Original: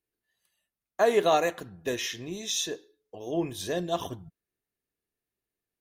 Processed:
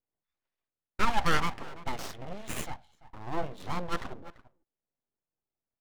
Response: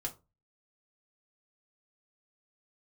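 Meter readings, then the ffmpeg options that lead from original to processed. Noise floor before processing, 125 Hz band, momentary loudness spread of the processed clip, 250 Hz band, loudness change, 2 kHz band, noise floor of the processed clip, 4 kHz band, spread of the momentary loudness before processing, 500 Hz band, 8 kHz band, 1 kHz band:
under -85 dBFS, +1.5 dB, 19 LU, -5.0 dB, -5.5 dB, +0.5 dB, under -85 dBFS, -6.5 dB, 18 LU, -13.0 dB, -9.5 dB, -1.5 dB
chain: -filter_complex "[0:a]asplit=2[a][b];[b]adelay=340,highpass=300,lowpass=3.4k,asoftclip=type=hard:threshold=-20dB,volume=-15dB[c];[a][c]amix=inputs=2:normalize=0,adynamicsmooth=sensitivity=4.5:basefreq=1.2k,aeval=exprs='abs(val(0))':c=same"

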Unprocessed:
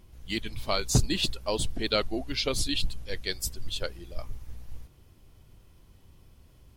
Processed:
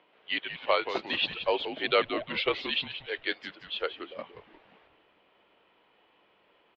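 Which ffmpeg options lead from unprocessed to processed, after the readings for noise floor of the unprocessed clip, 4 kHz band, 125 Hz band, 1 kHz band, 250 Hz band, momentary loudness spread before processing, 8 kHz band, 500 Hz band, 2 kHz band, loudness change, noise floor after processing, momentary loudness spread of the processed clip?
-57 dBFS, -1.0 dB, -20.0 dB, +5.0 dB, -5.5 dB, 18 LU, under -30 dB, +2.5 dB, +5.5 dB, -0.5 dB, -66 dBFS, 12 LU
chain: -filter_complex "[0:a]aeval=exprs='val(0)+0.00251*(sin(2*PI*50*n/s)+sin(2*PI*2*50*n/s)/2+sin(2*PI*3*50*n/s)/3+sin(2*PI*4*50*n/s)/4+sin(2*PI*5*50*n/s)/5)':c=same,highpass=f=490:t=q:w=0.5412,highpass=f=490:t=q:w=1.307,lowpass=f=3.3k:t=q:w=0.5176,lowpass=f=3.3k:t=q:w=0.7071,lowpass=f=3.3k:t=q:w=1.932,afreqshift=-53,asplit=5[a][b][c][d][e];[b]adelay=177,afreqshift=-120,volume=-10dB[f];[c]adelay=354,afreqshift=-240,volume=-18.4dB[g];[d]adelay=531,afreqshift=-360,volume=-26.8dB[h];[e]adelay=708,afreqshift=-480,volume=-35.2dB[i];[a][f][g][h][i]amix=inputs=5:normalize=0,volume=5dB"

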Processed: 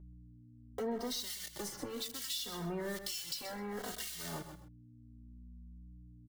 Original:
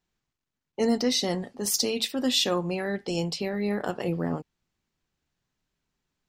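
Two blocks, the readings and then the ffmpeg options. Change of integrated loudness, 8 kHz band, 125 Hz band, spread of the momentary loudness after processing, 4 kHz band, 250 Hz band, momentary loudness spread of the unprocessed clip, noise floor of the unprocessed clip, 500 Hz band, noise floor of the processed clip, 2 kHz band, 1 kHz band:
-12.5 dB, -10.5 dB, -13.5 dB, 20 LU, -12.0 dB, -15.5 dB, 7 LU, under -85 dBFS, -13.5 dB, -58 dBFS, -11.0 dB, -10.5 dB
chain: -filter_complex "[0:a]acrossover=split=200|530|5200[a][b][c][d];[a]acompressor=threshold=-43dB:ratio=4[e];[b]acompressor=threshold=-35dB:ratio=4[f];[c]acompressor=threshold=-35dB:ratio=4[g];[d]acompressor=threshold=-44dB:ratio=4[h];[e][f][g][h]amix=inputs=4:normalize=0,acrusher=bits=6:mix=0:aa=0.000001,asoftclip=type=tanh:threshold=-34.5dB,highshelf=f=3k:g=10,bandreject=f=2.5k:w=6.1,acrossover=split=1800[i][j];[i]aeval=exprs='val(0)*(1-1/2+1/2*cos(2*PI*1.1*n/s))':c=same[k];[j]aeval=exprs='val(0)*(1-1/2-1/2*cos(2*PI*1.1*n/s))':c=same[l];[k][l]amix=inputs=2:normalize=0,aeval=exprs='val(0)+0.000708*(sin(2*PI*60*n/s)+sin(2*PI*2*60*n/s)/2+sin(2*PI*3*60*n/s)/3+sin(2*PI*4*60*n/s)/4+sin(2*PI*5*60*n/s)/5)':c=same,aecho=1:1:129|258:0.224|0.0358,acompressor=threshold=-51dB:ratio=4,asplit=2[m][n];[n]adelay=2.9,afreqshift=-0.68[o];[m][o]amix=inputs=2:normalize=1,volume=14dB"

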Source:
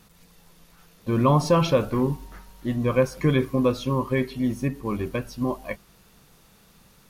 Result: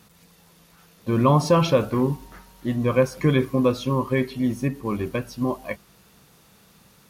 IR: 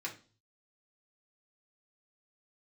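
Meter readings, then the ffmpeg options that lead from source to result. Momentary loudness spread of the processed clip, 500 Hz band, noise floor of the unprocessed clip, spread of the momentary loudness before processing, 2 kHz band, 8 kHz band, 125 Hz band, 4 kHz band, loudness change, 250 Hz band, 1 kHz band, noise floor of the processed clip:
14 LU, +1.5 dB, -56 dBFS, 14 LU, +1.5 dB, +1.5 dB, +1.5 dB, +1.5 dB, +1.5 dB, +1.5 dB, +1.5 dB, -56 dBFS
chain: -af "highpass=64,volume=1.5dB"

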